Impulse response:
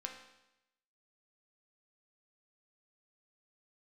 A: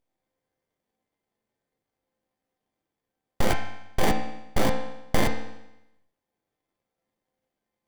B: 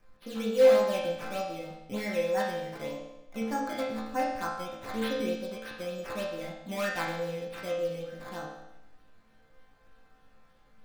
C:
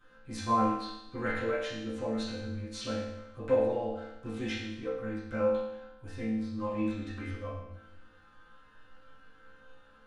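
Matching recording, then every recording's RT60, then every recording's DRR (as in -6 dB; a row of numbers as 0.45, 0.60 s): A; 0.90, 0.90, 0.90 s; 1.0, -8.0, -15.5 dB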